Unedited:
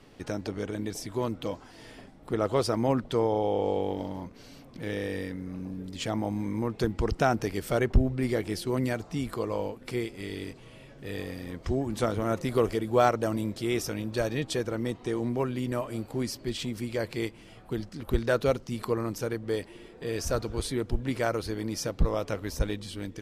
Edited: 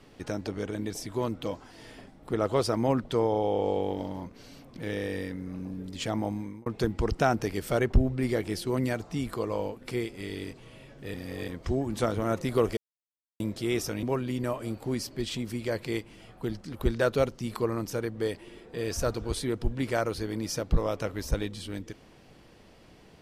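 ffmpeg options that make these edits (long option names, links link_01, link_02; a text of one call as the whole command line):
ffmpeg -i in.wav -filter_complex "[0:a]asplit=7[link_01][link_02][link_03][link_04][link_05][link_06][link_07];[link_01]atrim=end=6.66,asetpts=PTS-STARTPTS,afade=type=out:start_time=6.27:duration=0.39[link_08];[link_02]atrim=start=6.66:end=11.142,asetpts=PTS-STARTPTS,afade=type=in:duration=0.004:curve=hsin[link_09];[link_03]atrim=start=11.138:end=11.482,asetpts=PTS-STARTPTS,areverse[link_10];[link_04]atrim=start=11.478:end=12.77,asetpts=PTS-STARTPTS,afade=type=out:start_time=1.288:duration=0.004:curve=hsin[link_11];[link_05]atrim=start=12.77:end=13.4,asetpts=PTS-STARTPTS,volume=0[link_12];[link_06]atrim=start=13.4:end=14.032,asetpts=PTS-STARTPTS,afade=type=in:duration=0.004:curve=hsin[link_13];[link_07]atrim=start=15.308[link_14];[link_08][link_09]concat=n=2:v=0:a=1[link_15];[link_15][link_10]acrossfade=duration=0.004:curve1=hsin:curve2=hsin[link_16];[link_11][link_12][link_13]concat=n=3:v=0:a=1[link_17];[link_16][link_17]acrossfade=duration=0.004:curve1=hsin:curve2=hsin[link_18];[link_18][link_14]acrossfade=duration=0.004:curve1=hsin:curve2=hsin" out.wav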